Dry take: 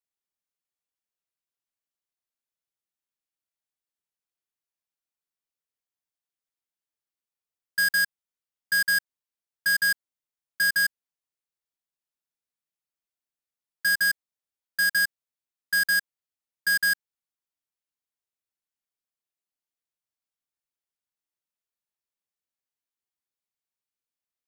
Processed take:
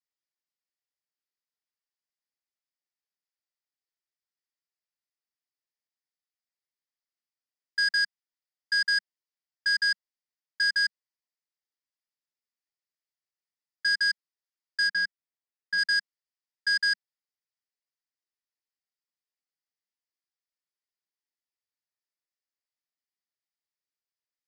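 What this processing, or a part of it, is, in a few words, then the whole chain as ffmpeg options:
television speaker: -filter_complex "[0:a]asplit=3[s0][s1][s2];[s0]afade=t=out:st=14.87:d=0.02[s3];[s1]aemphasis=mode=reproduction:type=bsi,afade=t=in:st=14.87:d=0.02,afade=t=out:st=15.77:d=0.02[s4];[s2]afade=t=in:st=15.77:d=0.02[s5];[s3][s4][s5]amix=inputs=3:normalize=0,highpass=190,equalizer=f=200:t=q:w=4:g=-3,equalizer=f=1900:t=q:w=4:g=8,equalizer=f=4900:t=q:w=4:g=10,lowpass=f=7400:w=0.5412,lowpass=f=7400:w=1.3066,volume=0.473"

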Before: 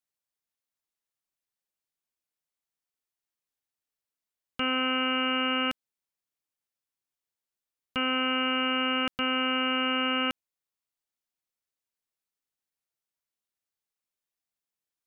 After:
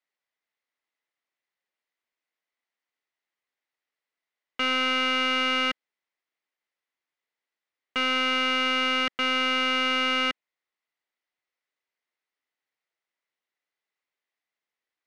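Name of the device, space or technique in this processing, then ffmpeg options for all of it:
intercom: -af "highpass=310,lowpass=3600,equalizer=f=2000:t=o:w=0.23:g=9,asoftclip=type=tanh:threshold=0.0944,volume=1.88"

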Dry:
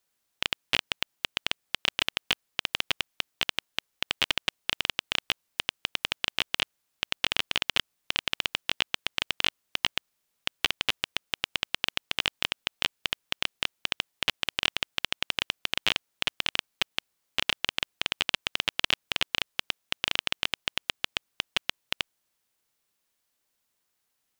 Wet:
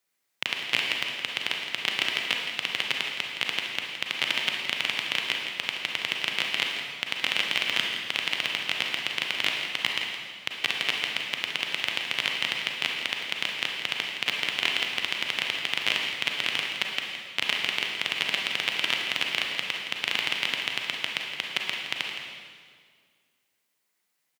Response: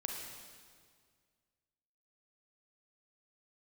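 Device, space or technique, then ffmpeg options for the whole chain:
PA in a hall: -filter_complex "[0:a]highpass=f=120:w=0.5412,highpass=f=120:w=1.3066,equalizer=f=2100:t=o:w=0.38:g=6.5,aecho=1:1:167:0.266[s0];[1:a]atrim=start_sample=2205[s1];[s0][s1]afir=irnorm=-1:irlink=0"

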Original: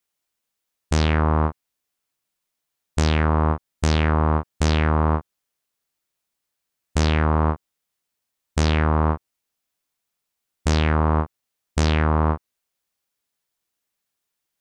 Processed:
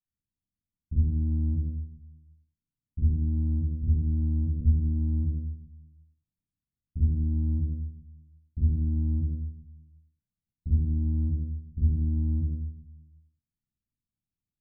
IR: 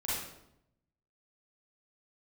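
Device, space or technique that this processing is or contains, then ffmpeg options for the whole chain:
club heard from the street: -filter_complex "[0:a]alimiter=limit=0.15:level=0:latency=1:release=16,lowpass=f=230:w=0.5412,lowpass=f=230:w=1.3066[s0];[1:a]atrim=start_sample=2205[s1];[s0][s1]afir=irnorm=-1:irlink=0"

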